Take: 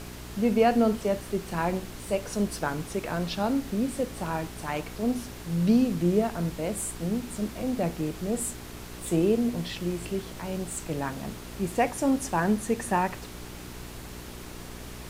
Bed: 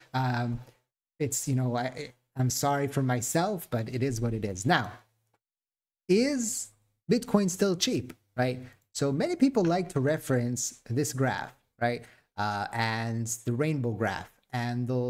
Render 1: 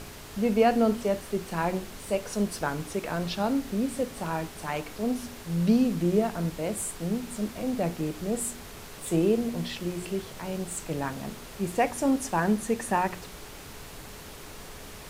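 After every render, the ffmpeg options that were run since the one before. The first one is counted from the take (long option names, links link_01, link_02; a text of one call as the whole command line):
ffmpeg -i in.wav -af "bandreject=frequency=60:width_type=h:width=4,bandreject=frequency=120:width_type=h:width=4,bandreject=frequency=180:width_type=h:width=4,bandreject=frequency=240:width_type=h:width=4,bandreject=frequency=300:width_type=h:width=4,bandreject=frequency=360:width_type=h:width=4" out.wav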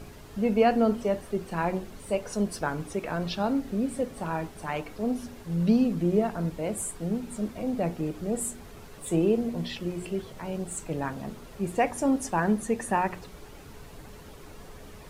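ffmpeg -i in.wav -af "afftdn=noise_reduction=9:noise_floor=-44" out.wav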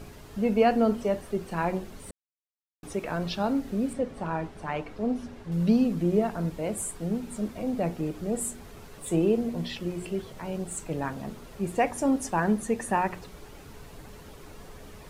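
ffmpeg -i in.wav -filter_complex "[0:a]asettb=1/sr,asplit=3[link_01][link_02][link_03];[link_01]atrim=end=3.934[link_04];[link_02]atrim=start=3.93:end=5.52,asetpts=PTS-STARTPTS,afade=type=in:duration=0.004:curve=qsin,afade=type=out:start_time=1.586:duration=0.004:curve=qsin,aemphasis=mode=reproduction:type=50fm[link_05];[link_03]atrim=start=5.516[link_06];[link_04][link_05]acrossfade=duration=0.004:curve1=hsin:curve2=qsin[link_07];[link_07][link_06]acrossfade=duration=0.004:curve1=qsin:curve2=hsin,asplit=3[link_08][link_09][link_10];[link_08]atrim=end=2.11,asetpts=PTS-STARTPTS,afade=type=out:start_time=2.106:duration=0.004:curve=hsin[link_11];[link_09]atrim=start=2.11:end=2.83,asetpts=PTS-STARTPTS,volume=0[link_12];[link_10]atrim=start=2.83,asetpts=PTS-STARTPTS,afade=type=in:duration=0.004:curve=hsin[link_13];[link_11][link_12][link_13]concat=n=3:v=0:a=1" out.wav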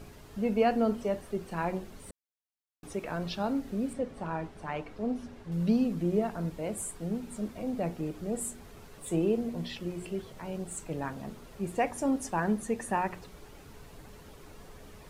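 ffmpeg -i in.wav -af "volume=-4dB" out.wav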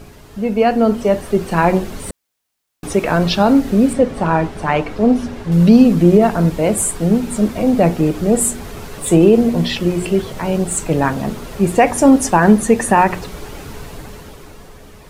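ffmpeg -i in.wav -af "dynaudnorm=framelen=100:gausssize=21:maxgain=10dB,alimiter=level_in=9.5dB:limit=-1dB:release=50:level=0:latency=1" out.wav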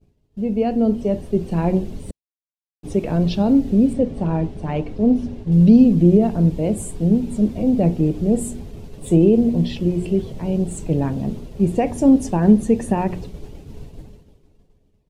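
ffmpeg -i in.wav -af "agate=range=-33dB:threshold=-26dB:ratio=3:detection=peak,firequalizer=gain_entry='entry(110,0);entry(1300,-21);entry(2800,-12);entry(14000,-18)':delay=0.05:min_phase=1" out.wav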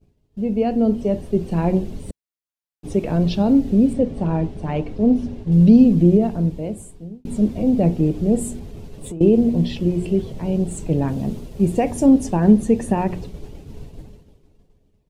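ffmpeg -i in.wav -filter_complex "[0:a]asettb=1/sr,asplit=3[link_01][link_02][link_03];[link_01]atrim=end=8.584[link_04];[link_02]atrim=start=8.58:end=9.21,asetpts=PTS-STARTPTS,afade=type=in:duration=0.004:curve=qsin,afade=type=out:start_time=0.626:duration=0.004:curve=qsin,acompressor=threshold=-28dB:ratio=8:attack=3.2:release=140:knee=1:detection=peak[link_05];[link_03]atrim=start=9.206[link_06];[link_04][link_05]acrossfade=duration=0.004:curve1=hsin:curve2=qsin[link_07];[link_07][link_06]acrossfade=duration=0.004:curve1=qsin:curve2=hsin,asettb=1/sr,asplit=3[link_08][link_09][link_10];[link_08]atrim=end=11.084[link_11];[link_09]atrim=start=11.08:end=12.06,asetpts=PTS-STARTPTS,afade=type=in:duration=0.004:curve=qsin,afade=type=out:start_time=0.976:duration=0.004:curve=qsin,highshelf=frequency=6300:gain=6[link_12];[link_10]atrim=start=12.056[link_13];[link_11][link_12]acrossfade=duration=0.004:curve1=hsin:curve2=qsin[link_14];[link_14][link_13]acrossfade=duration=0.004:curve1=qsin:curve2=hsin,asplit=2[link_15][link_16];[link_15]atrim=end=7.25,asetpts=PTS-STARTPTS,afade=type=out:start_time=5.99:duration=1.26[link_17];[link_16]atrim=start=7.25,asetpts=PTS-STARTPTS,afade=type=in:duration=0.004:curve=hsin[link_18];[link_17][link_18]concat=n=2:v=0:a=1" out.wav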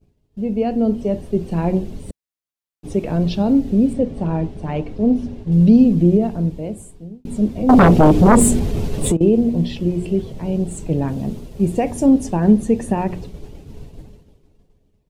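ffmpeg -i in.wav -filter_complex "[0:a]asettb=1/sr,asplit=3[link_01][link_02][link_03];[link_01]atrim=end=7.694[link_04];[link_02]atrim=start=7.69:end=9.17,asetpts=PTS-STARTPTS,afade=type=in:duration=0.004:curve=qsin,afade=type=out:start_time=1.476:duration=0.004:curve=qsin,aeval=exprs='0.531*sin(PI/2*3.55*val(0)/0.531)':channel_layout=same[link_05];[link_03]atrim=start=9.166[link_06];[link_04][link_05]acrossfade=duration=0.004:curve1=hsin:curve2=qsin[link_07];[link_07][link_06]acrossfade=duration=0.004:curve1=qsin:curve2=hsin" out.wav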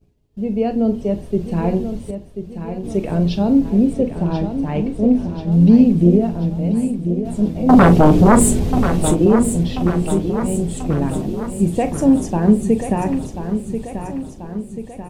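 ffmpeg -i in.wav -filter_complex "[0:a]asplit=2[link_01][link_02];[link_02]adelay=40,volume=-12dB[link_03];[link_01][link_03]amix=inputs=2:normalize=0,asplit=2[link_04][link_05];[link_05]aecho=0:1:1037|2074|3111|4148|5185|6222:0.355|0.195|0.107|0.059|0.0325|0.0179[link_06];[link_04][link_06]amix=inputs=2:normalize=0" out.wav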